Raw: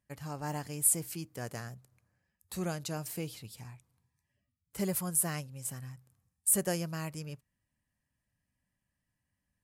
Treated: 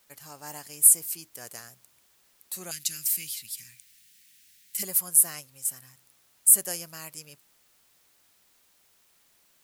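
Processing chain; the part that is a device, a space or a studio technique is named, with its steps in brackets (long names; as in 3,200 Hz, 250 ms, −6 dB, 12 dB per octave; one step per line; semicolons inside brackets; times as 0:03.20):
turntable without a phono preamp (RIAA equalisation recording; white noise bed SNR 34 dB)
0:02.71–0:04.83: drawn EQ curve 230 Hz 0 dB, 810 Hz −29 dB, 1,900 Hz +6 dB
level −3.5 dB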